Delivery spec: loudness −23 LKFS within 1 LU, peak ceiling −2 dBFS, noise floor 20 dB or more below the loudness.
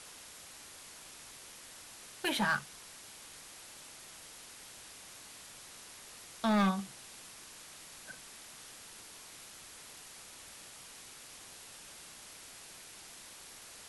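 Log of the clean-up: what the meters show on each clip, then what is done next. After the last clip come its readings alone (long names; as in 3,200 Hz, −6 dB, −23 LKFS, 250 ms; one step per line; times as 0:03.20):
share of clipped samples 0.5%; peaks flattened at −24.5 dBFS; background noise floor −52 dBFS; target noise floor −62 dBFS; integrated loudness −41.5 LKFS; sample peak −24.5 dBFS; target loudness −23.0 LKFS
→ clipped peaks rebuilt −24.5 dBFS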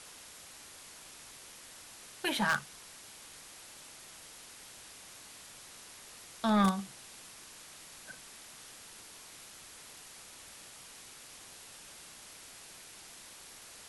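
share of clipped samples 0.0%; background noise floor −52 dBFS; target noise floor −61 dBFS
→ broadband denoise 9 dB, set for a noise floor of −52 dBFS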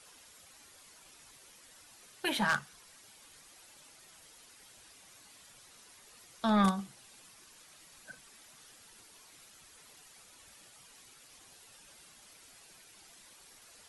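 background noise floor −58 dBFS; integrated loudness −31.5 LKFS; sample peak −15.5 dBFS; target loudness −23.0 LKFS
→ level +8.5 dB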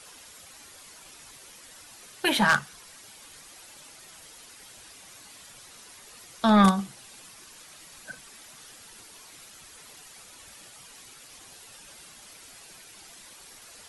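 integrated loudness −23.0 LKFS; sample peak −7.0 dBFS; background noise floor −50 dBFS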